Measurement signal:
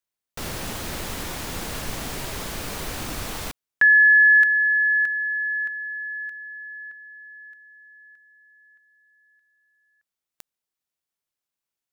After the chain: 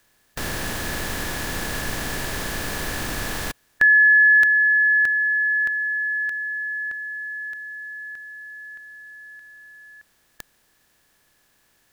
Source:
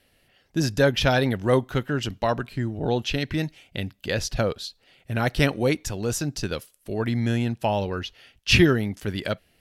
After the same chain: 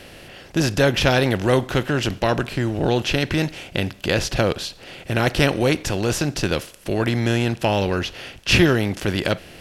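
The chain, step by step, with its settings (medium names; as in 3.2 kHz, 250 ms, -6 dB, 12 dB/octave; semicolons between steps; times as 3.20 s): spectral levelling over time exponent 0.6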